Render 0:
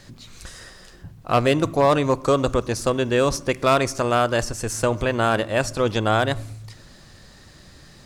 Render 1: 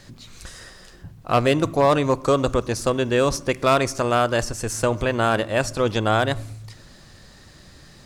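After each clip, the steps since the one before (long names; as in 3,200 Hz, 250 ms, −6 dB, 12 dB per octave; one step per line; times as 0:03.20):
no processing that can be heard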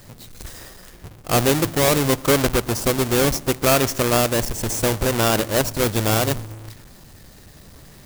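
each half-wave held at its own peak
high-shelf EQ 5,800 Hz +10.5 dB
in parallel at −9 dB: sample-and-hold swept by an LFO 19×, swing 160% 0.71 Hz
on the sum: level −6 dB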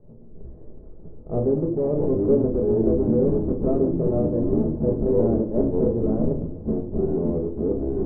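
delay with pitch and tempo change per echo 230 ms, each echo −5 semitones, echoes 2
transistor ladder low-pass 570 Hz, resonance 35%
rectangular room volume 260 cubic metres, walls furnished, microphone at 1.4 metres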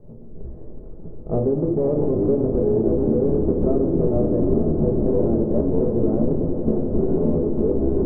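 downward compressor, threshold −22 dBFS, peak gain reduction 8.5 dB
on a send: echo that builds up and dies away 90 ms, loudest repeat 8, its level −16 dB
on the sum: level +5.5 dB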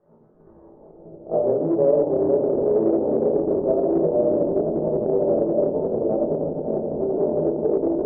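rectangular room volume 110 cubic metres, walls mixed, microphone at 1.1 metres
in parallel at −5.5 dB: soft clipping −14.5 dBFS, distortion −7 dB
on the sum: band-pass filter sweep 1,300 Hz → 620 Hz, 0:00.43–0:01.12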